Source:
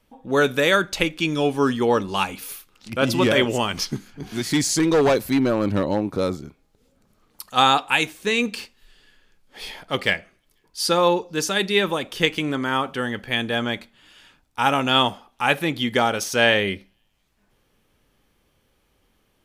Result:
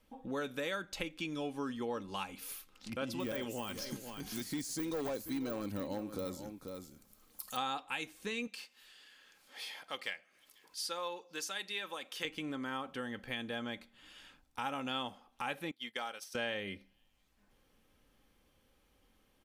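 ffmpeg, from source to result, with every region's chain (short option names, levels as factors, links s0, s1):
-filter_complex "[0:a]asettb=1/sr,asplit=3[s0][s1][s2];[s0]atrim=end=3.204[s3];[s1]atrim=start=3.2:end=7.57,asetpts=PTS-STARTPTS,afade=t=in:d=0.004:c=qsin,afade=t=out:st=4.366:d=0.004:c=qsin,deesser=0.9,aemphasis=mode=production:type=75fm,aecho=1:1:489:0.2,atrim=end_sample=192717[s4];[s2]atrim=start=7.566[s5];[s3][s4]acrossfade=d=0.004:c1=hsin:c2=qsin[s6];[s6][s5]acrossfade=d=0.004:c1=qsin:c2=hsin,asettb=1/sr,asplit=3[s7][s8][s9];[s7]atrim=end=8.474[s10];[s8]atrim=start=8.47:end=12.25,asetpts=PTS-STARTPTS,afade=t=in:d=0.004:c=qsin,afade=t=out:st=3.776:d=0.004:c=qsin,highpass=f=1100:p=1,acompressor=mode=upward:threshold=0.00562:ratio=2.5:attack=3.2:release=140:knee=2.83:detection=peak[s11];[s9]atrim=start=12.246[s12];[s10][s11]acrossfade=d=0.004:c1=hsin:c2=qsin[s13];[s13][s12]acrossfade=d=0.004:c1=qsin:c2=hsin,asettb=1/sr,asplit=3[s14][s15][s16];[s14]atrim=end=15.714[s17];[s15]atrim=start=15.71:end=16.35,asetpts=PTS-STARTPTS,afade=t=in:d=0.004:c=qsin,afade=t=out:st=0.636:d=0.004:c=qsin,agate=range=0.0224:threshold=0.0794:ratio=3:release=100:detection=peak,highpass=f=1200:p=1,bandreject=f=6700:w=8.6[s18];[s16]atrim=start=16.346[s19];[s17][s18]acrossfade=d=0.004:c1=hsin:c2=qsin[s20];[s20][s19]acrossfade=d=0.004:c1=qsin:c2=hsin,aecho=1:1:3.8:0.3,acompressor=threshold=0.0158:ratio=2.5,volume=0.501"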